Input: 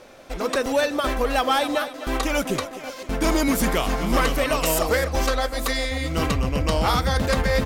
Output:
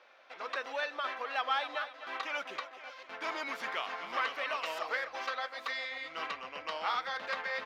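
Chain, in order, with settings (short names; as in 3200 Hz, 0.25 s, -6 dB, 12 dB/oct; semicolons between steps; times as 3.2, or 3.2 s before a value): HPF 1100 Hz 12 dB/oct; air absorption 270 m; gain -5 dB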